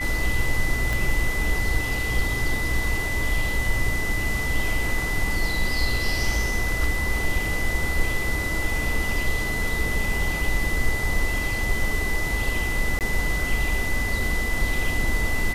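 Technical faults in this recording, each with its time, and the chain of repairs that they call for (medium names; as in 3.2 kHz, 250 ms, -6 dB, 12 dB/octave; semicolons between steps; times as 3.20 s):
whine 2 kHz -27 dBFS
0.93 s: pop
12.99–13.01 s: dropout 18 ms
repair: de-click; band-stop 2 kHz, Q 30; interpolate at 12.99 s, 18 ms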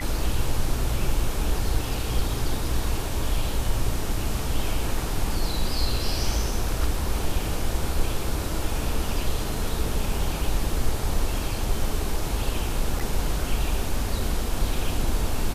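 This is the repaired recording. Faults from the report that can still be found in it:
0.93 s: pop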